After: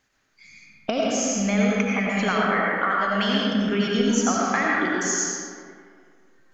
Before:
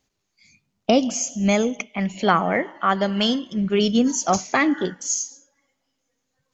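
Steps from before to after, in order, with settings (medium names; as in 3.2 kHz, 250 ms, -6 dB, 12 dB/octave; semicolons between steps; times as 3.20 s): peaking EQ 1.6 kHz +13 dB 1 oct; compression, threshold -24 dBFS, peak gain reduction 17.5 dB; reverberation RT60 2.1 s, pre-delay 50 ms, DRR -4 dB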